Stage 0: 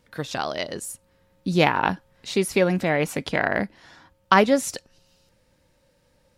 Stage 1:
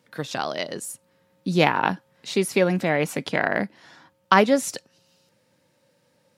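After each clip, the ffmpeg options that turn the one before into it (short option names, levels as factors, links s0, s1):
-af "highpass=f=120:w=0.5412,highpass=f=120:w=1.3066"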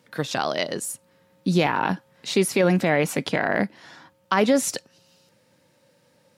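-af "alimiter=limit=0.224:level=0:latency=1:release=19,volume=1.5"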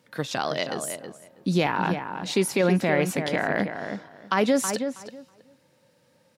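-filter_complex "[0:a]asplit=2[s0][s1];[s1]adelay=322,lowpass=f=2100:p=1,volume=0.447,asplit=2[s2][s3];[s3]adelay=322,lowpass=f=2100:p=1,volume=0.19,asplit=2[s4][s5];[s5]adelay=322,lowpass=f=2100:p=1,volume=0.19[s6];[s0][s2][s4][s6]amix=inputs=4:normalize=0,volume=0.75"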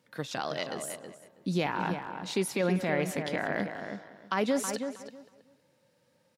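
-filter_complex "[0:a]asplit=2[s0][s1];[s1]adelay=190,highpass=300,lowpass=3400,asoftclip=type=hard:threshold=0.119,volume=0.251[s2];[s0][s2]amix=inputs=2:normalize=0,volume=0.473"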